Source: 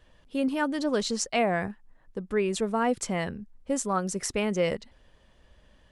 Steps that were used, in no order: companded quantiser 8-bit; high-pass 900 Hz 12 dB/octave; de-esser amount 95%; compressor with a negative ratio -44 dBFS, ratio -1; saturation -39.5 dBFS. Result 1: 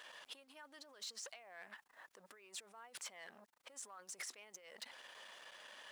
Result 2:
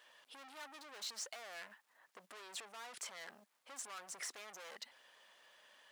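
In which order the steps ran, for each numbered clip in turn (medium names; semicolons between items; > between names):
compressor with a negative ratio > de-esser > saturation > high-pass > companded quantiser; de-esser > saturation > compressor with a negative ratio > companded quantiser > high-pass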